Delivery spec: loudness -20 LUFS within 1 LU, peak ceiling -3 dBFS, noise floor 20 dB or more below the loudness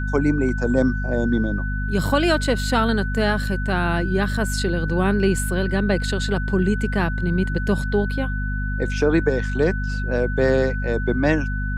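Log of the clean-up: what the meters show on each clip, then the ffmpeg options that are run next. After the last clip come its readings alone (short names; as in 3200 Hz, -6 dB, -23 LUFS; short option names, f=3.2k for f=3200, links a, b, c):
hum 50 Hz; harmonics up to 250 Hz; hum level -22 dBFS; steady tone 1500 Hz; tone level -30 dBFS; loudness -21.5 LUFS; peak -5.0 dBFS; loudness target -20.0 LUFS
-> -af "bandreject=f=50:t=h:w=6,bandreject=f=100:t=h:w=6,bandreject=f=150:t=h:w=6,bandreject=f=200:t=h:w=6,bandreject=f=250:t=h:w=6"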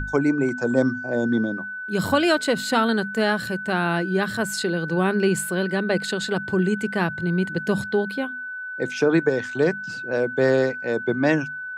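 hum none; steady tone 1500 Hz; tone level -30 dBFS
-> -af "bandreject=f=1.5k:w=30"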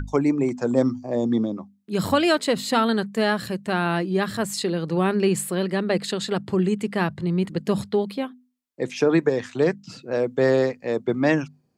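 steady tone none; loudness -23.5 LUFS; peak -7.0 dBFS; loudness target -20.0 LUFS
-> -af "volume=3.5dB"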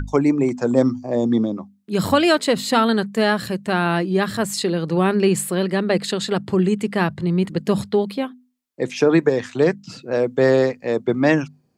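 loudness -20.0 LUFS; peak -3.5 dBFS; noise floor -61 dBFS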